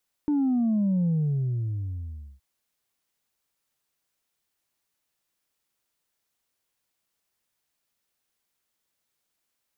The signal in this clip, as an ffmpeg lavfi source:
-f lavfi -i "aevalsrc='0.0891*clip((2.12-t)/1.33,0,1)*tanh(1.12*sin(2*PI*300*2.12/log(65/300)*(exp(log(65/300)*t/2.12)-1)))/tanh(1.12)':d=2.12:s=44100"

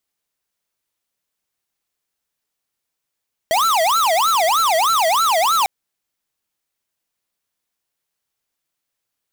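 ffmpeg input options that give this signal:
-f lavfi -i "aevalsrc='0.158*(2*lt(mod((993.5*t-356.5/(2*PI*3.2)*sin(2*PI*3.2*t)),1),0.5)-1)':d=2.15:s=44100"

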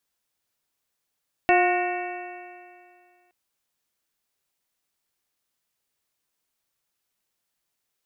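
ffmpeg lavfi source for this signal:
-f lavfi -i "aevalsrc='0.1*pow(10,-3*t/2.24)*sin(2*PI*355.57*t)+0.15*pow(10,-3*t/2.24)*sin(2*PI*714.53*t)+0.0299*pow(10,-3*t/2.24)*sin(2*PI*1080.23*t)+0.0376*pow(10,-3*t/2.24)*sin(2*PI*1455.9*t)+0.0668*pow(10,-3*t/2.24)*sin(2*PI*1844.63*t)+0.0501*pow(10,-3*t/2.24)*sin(2*PI*2249.34*t)+0.0562*pow(10,-3*t/2.24)*sin(2*PI*2672.73*t)':d=1.82:s=44100"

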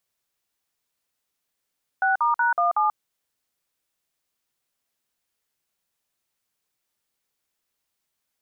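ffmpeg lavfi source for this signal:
-f lavfi -i "aevalsrc='0.0944*clip(min(mod(t,0.186),0.136-mod(t,0.186))/0.002,0,1)*(eq(floor(t/0.186),0)*(sin(2*PI*770*mod(t,0.186))+sin(2*PI*1477*mod(t,0.186)))+eq(floor(t/0.186),1)*(sin(2*PI*941*mod(t,0.186))+sin(2*PI*1209*mod(t,0.186)))+eq(floor(t/0.186),2)*(sin(2*PI*941*mod(t,0.186))+sin(2*PI*1477*mod(t,0.186)))+eq(floor(t/0.186),3)*(sin(2*PI*697*mod(t,0.186))+sin(2*PI*1209*mod(t,0.186)))+eq(floor(t/0.186),4)*(sin(2*PI*852*mod(t,0.186))+sin(2*PI*1209*mod(t,0.186))))':d=0.93:s=44100"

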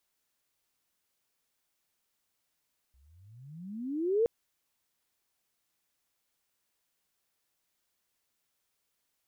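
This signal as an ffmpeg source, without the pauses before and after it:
-f lavfi -i "aevalsrc='pow(10,(-21.5+40*(t/1.32-1))/20)*sin(2*PI*61.7*1.32/(35.5*log(2)/12)*(exp(35.5*log(2)/12*t/1.32)-1))':d=1.32:s=44100"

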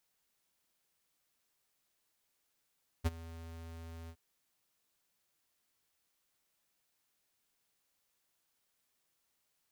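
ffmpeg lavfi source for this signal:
-f lavfi -i "aevalsrc='0.0398*(2*lt(mod(82.5*t,1),0.5)-1)':d=1.117:s=44100,afade=t=in:d=0.024,afade=t=out:st=0.024:d=0.03:silence=0.106,afade=t=out:st=1.05:d=0.067"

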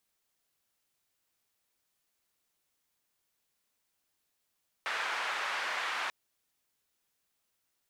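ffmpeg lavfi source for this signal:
-f lavfi -i "anoisesrc=c=white:d=1.24:r=44100:seed=1,highpass=f=1100,lowpass=f=1600,volume=-14.8dB"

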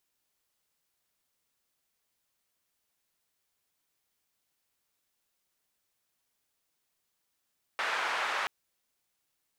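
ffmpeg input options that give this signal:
-f lavfi -i "anoisesrc=c=white:d=0.68:r=44100:seed=1,highpass=f=980,lowpass=f=1500,volume=-12.2dB"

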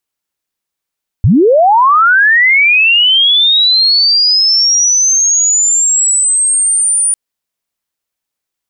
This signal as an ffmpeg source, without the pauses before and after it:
-f lavfi -i "aevalsrc='pow(10,(-4-4.5*t/5.9)/20)*sin(2*PI*(78*t+9422*t*t/(2*5.9)))':d=5.9:s=44100"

